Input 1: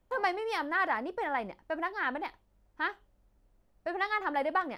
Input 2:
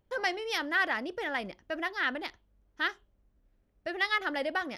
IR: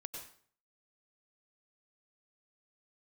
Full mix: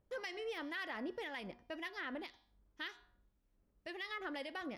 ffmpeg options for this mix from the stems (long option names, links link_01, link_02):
-filter_complex "[0:a]highpass=61,volume=-15dB,asplit=2[link_01][link_02];[link_02]volume=-14.5dB[link_03];[1:a]deesser=0.7,bandreject=frequency=240.5:width_type=h:width=4,bandreject=frequency=481:width_type=h:width=4,bandreject=frequency=721.5:width_type=h:width=4,bandreject=frequency=962:width_type=h:width=4,bandreject=frequency=1202.5:width_type=h:width=4,bandreject=frequency=1443:width_type=h:width=4,bandreject=frequency=1683.5:width_type=h:width=4,bandreject=frequency=1924:width_type=h:width=4,bandreject=frequency=2164.5:width_type=h:width=4,bandreject=frequency=2405:width_type=h:width=4,bandreject=frequency=2645.5:width_type=h:width=4,bandreject=frequency=2886:width_type=h:width=4,bandreject=frequency=3126.5:width_type=h:width=4,bandreject=frequency=3367:width_type=h:width=4,bandreject=frequency=3607.5:width_type=h:width=4,bandreject=frequency=3848:width_type=h:width=4,bandreject=frequency=4088.5:width_type=h:width=4,bandreject=frequency=4329:width_type=h:width=4,bandreject=frequency=4569.5:width_type=h:width=4,bandreject=frequency=4810:width_type=h:width=4,bandreject=frequency=5050.5:width_type=h:width=4,bandreject=frequency=5291:width_type=h:width=4,bandreject=frequency=5531.5:width_type=h:width=4,bandreject=frequency=5772:width_type=h:width=4,bandreject=frequency=6012.5:width_type=h:width=4,bandreject=frequency=6253:width_type=h:width=4,bandreject=frequency=6493.5:width_type=h:width=4,acrossover=split=1700[link_04][link_05];[link_04]aeval=exprs='val(0)*(1-0.7/2+0.7/2*cos(2*PI*1.9*n/s))':channel_layout=same[link_06];[link_05]aeval=exprs='val(0)*(1-0.7/2-0.7/2*cos(2*PI*1.9*n/s))':channel_layout=same[link_07];[link_06][link_07]amix=inputs=2:normalize=0,volume=-4dB[link_08];[2:a]atrim=start_sample=2205[link_09];[link_03][link_09]afir=irnorm=-1:irlink=0[link_10];[link_01][link_08][link_10]amix=inputs=3:normalize=0,alimiter=level_in=10dB:limit=-24dB:level=0:latency=1:release=82,volume=-10dB"